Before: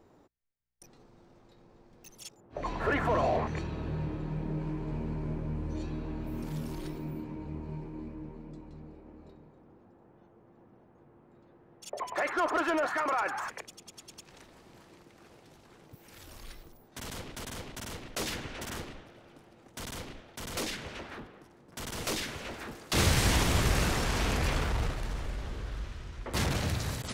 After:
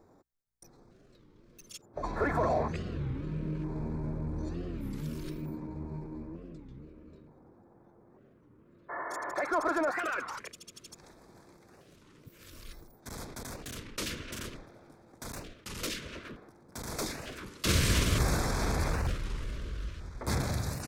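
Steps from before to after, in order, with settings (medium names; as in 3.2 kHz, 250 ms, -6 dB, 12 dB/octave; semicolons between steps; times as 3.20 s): band-stop 1.9 kHz, Q 23; tempo 1.3×; LFO notch square 0.55 Hz 810–2900 Hz; spectral replace 8.92–9.30 s, 220–2200 Hz after; warped record 33 1/3 rpm, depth 250 cents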